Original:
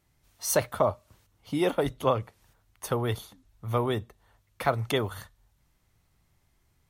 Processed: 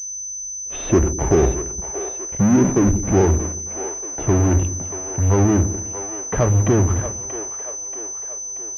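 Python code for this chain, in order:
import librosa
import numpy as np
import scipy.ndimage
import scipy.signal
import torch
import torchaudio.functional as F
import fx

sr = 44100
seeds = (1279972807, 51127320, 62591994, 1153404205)

p1 = fx.speed_glide(x, sr, from_pct=58, to_pct=99)
p2 = fx.tilt_shelf(p1, sr, db=9.5, hz=650.0)
p3 = fx.fuzz(p2, sr, gain_db=40.0, gate_db=-44.0)
p4 = p2 + (p3 * 10.0 ** (-6.5 / 20.0))
p5 = fx.air_absorb(p4, sr, metres=220.0)
p6 = fx.echo_split(p5, sr, split_hz=390.0, low_ms=98, high_ms=632, feedback_pct=52, wet_db=-10.0)
y = fx.pwm(p6, sr, carrier_hz=6100.0)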